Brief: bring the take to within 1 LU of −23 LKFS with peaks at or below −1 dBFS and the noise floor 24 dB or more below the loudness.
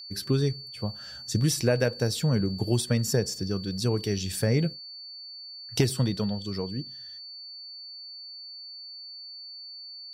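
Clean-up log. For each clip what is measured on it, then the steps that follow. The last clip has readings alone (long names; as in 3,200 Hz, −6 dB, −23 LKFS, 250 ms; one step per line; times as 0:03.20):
interfering tone 4,500 Hz; level of the tone −40 dBFS; integrated loudness −27.5 LKFS; sample peak −11.0 dBFS; target loudness −23.0 LKFS
→ notch filter 4,500 Hz, Q 30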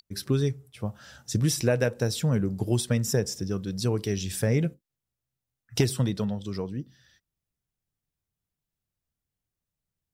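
interfering tone none found; integrated loudness −28.0 LKFS; sample peak −11.0 dBFS; target loudness −23.0 LKFS
→ level +5 dB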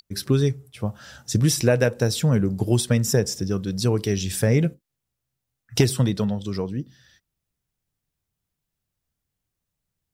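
integrated loudness −23.0 LKFS; sample peak −6.0 dBFS; background noise floor −83 dBFS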